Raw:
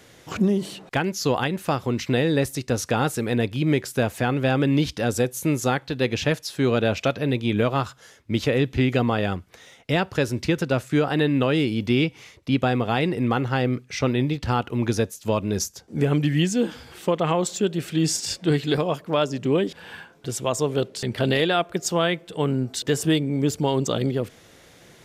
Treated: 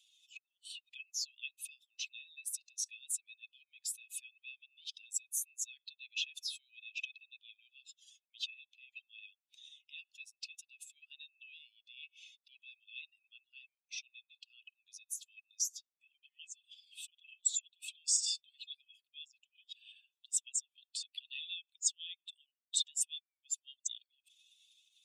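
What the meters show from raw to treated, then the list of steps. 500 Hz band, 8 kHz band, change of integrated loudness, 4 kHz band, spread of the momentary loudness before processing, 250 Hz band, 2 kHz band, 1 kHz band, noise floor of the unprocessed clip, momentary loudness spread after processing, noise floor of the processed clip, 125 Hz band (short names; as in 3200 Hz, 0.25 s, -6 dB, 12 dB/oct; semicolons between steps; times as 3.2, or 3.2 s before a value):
under -40 dB, -3.5 dB, -15.5 dB, -11.5 dB, 6 LU, under -40 dB, -20.5 dB, under -40 dB, -52 dBFS, 21 LU, under -85 dBFS, under -40 dB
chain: spectral contrast raised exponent 2; rippled Chebyshev high-pass 2500 Hz, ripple 9 dB; gain +1 dB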